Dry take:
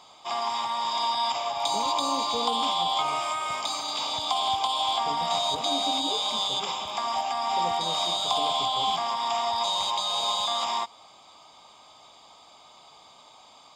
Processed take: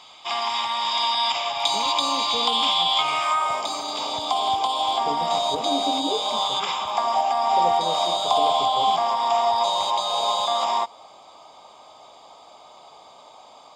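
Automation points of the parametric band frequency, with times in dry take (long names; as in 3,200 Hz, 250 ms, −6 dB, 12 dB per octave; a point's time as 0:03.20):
parametric band +9.5 dB 1.8 octaves
0:03.12 2,700 Hz
0:03.68 410 Hz
0:06.21 410 Hz
0:06.70 1,900 Hz
0:07.05 580 Hz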